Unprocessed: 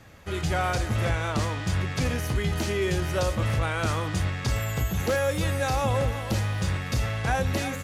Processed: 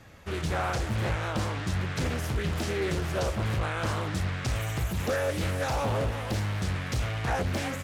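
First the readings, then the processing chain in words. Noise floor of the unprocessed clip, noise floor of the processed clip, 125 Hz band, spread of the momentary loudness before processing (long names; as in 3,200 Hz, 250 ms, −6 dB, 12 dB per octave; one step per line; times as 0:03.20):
−34 dBFS, −35 dBFS, −3.0 dB, 3 LU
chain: in parallel at −2.5 dB: brickwall limiter −23 dBFS, peak gain reduction 7 dB
on the sum: highs frequency-modulated by the lows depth 0.73 ms
level −6 dB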